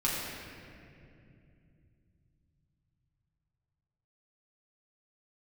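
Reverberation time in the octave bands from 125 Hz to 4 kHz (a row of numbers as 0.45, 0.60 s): 5.6, 4.0, 3.0, 2.1, 2.3, 1.6 s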